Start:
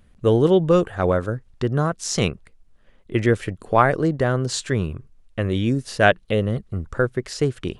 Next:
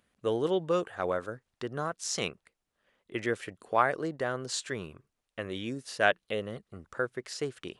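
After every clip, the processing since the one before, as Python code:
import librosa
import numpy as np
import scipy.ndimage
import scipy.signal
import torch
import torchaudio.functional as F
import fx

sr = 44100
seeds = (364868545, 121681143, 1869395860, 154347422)

y = fx.highpass(x, sr, hz=570.0, slope=6)
y = y * 10.0 ** (-7.0 / 20.0)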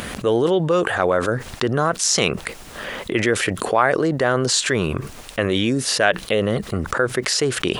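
y = fx.env_flatten(x, sr, amount_pct=70)
y = y * 10.0 ** (6.0 / 20.0)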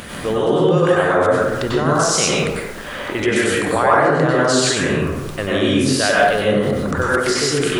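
y = fx.rev_plate(x, sr, seeds[0], rt60_s=1.1, hf_ratio=0.45, predelay_ms=85, drr_db=-6.0)
y = y * 10.0 ** (-3.5 / 20.0)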